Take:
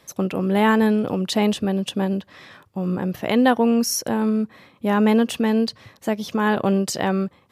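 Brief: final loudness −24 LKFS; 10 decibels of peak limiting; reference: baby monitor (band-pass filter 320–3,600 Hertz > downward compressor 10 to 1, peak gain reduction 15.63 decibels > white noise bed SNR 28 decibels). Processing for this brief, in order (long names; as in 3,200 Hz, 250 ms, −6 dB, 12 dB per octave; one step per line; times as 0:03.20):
brickwall limiter −15.5 dBFS
band-pass filter 320–3,600 Hz
downward compressor 10 to 1, threshold −36 dBFS
white noise bed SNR 28 dB
level +17 dB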